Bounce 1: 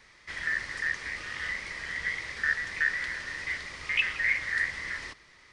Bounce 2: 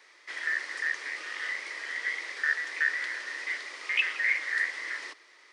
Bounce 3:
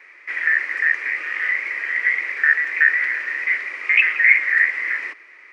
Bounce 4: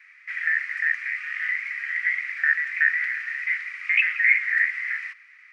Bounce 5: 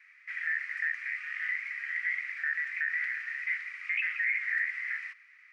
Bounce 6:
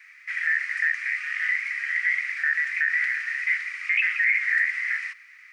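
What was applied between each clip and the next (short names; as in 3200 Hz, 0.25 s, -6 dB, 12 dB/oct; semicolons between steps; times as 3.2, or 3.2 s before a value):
steep high-pass 310 Hz 36 dB/oct
EQ curve 190 Hz 0 dB, 930 Hz -4 dB, 2400 Hz +8 dB, 3400 Hz -14 dB; gain +7.5 dB
steep high-pass 1300 Hz 36 dB/oct; gain -5 dB
limiter -15 dBFS, peak gain reduction 8.5 dB; gain -6.5 dB
tone controls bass +9 dB, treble +8 dB; gain +7.5 dB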